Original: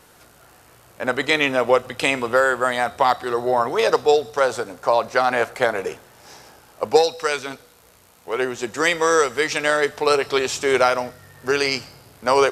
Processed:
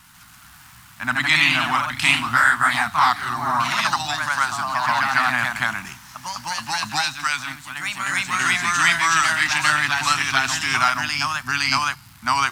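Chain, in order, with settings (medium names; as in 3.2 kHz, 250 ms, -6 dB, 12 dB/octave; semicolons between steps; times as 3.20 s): crackle 490 per s -41 dBFS; ever faster or slower copies 139 ms, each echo +1 st, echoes 3; Chebyshev band-stop 200–1100 Hz, order 2; trim +2.5 dB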